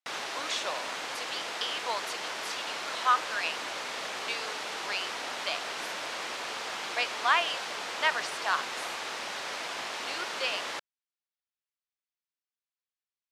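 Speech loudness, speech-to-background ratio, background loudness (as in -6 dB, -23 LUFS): -32.5 LUFS, 2.5 dB, -35.0 LUFS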